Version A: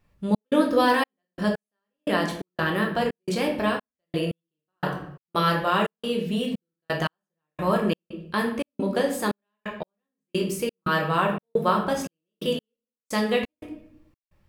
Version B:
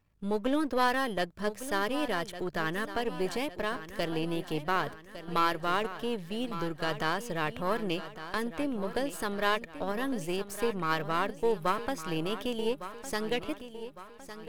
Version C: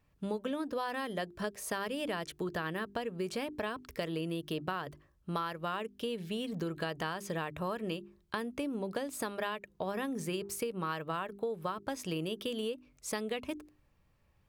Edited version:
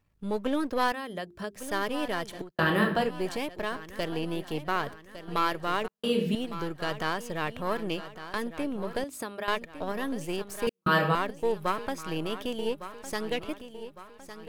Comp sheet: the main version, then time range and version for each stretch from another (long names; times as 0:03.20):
B
0:00.92–0:01.56: punch in from C
0:02.41–0:03.05: punch in from A, crossfade 0.24 s
0:05.88–0:06.35: punch in from A
0:09.04–0:09.48: punch in from C
0:10.67–0:11.15: punch in from A